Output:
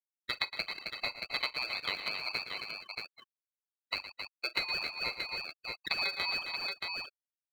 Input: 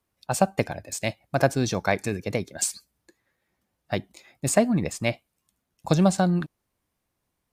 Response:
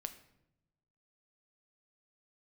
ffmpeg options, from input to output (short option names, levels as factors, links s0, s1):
-filter_complex "[0:a]lowpass=f=3100:t=q:w=0.5098,lowpass=f=3100:t=q:w=0.6013,lowpass=f=3100:t=q:w=0.9,lowpass=f=3100:t=q:w=2.563,afreqshift=-3700,afftfilt=real='re*gte(hypot(re,im),0.0631)':imag='im*gte(hypot(re,im),0.0631)':win_size=1024:overlap=0.75,asplit=2[s0][s1];[s1]acrusher=samples=35:mix=1:aa=0.000001:lfo=1:lforange=21:lforate=2.5,volume=0.355[s2];[s0][s2]amix=inputs=2:normalize=0,aeval=exprs='val(0)*sin(2*PI*970*n/s)':c=same,aecho=1:1:41|112|266|627:0.112|0.2|0.237|0.266,acompressor=threshold=0.02:ratio=3"